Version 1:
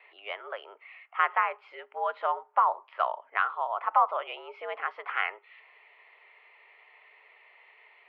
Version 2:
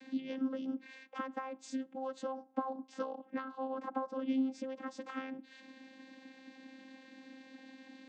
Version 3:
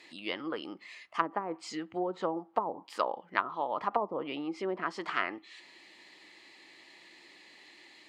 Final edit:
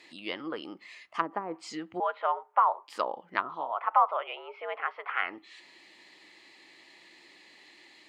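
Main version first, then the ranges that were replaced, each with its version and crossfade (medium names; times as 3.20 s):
3
2.00–2.88 s: from 1
3.64–5.29 s: from 1, crossfade 0.24 s
not used: 2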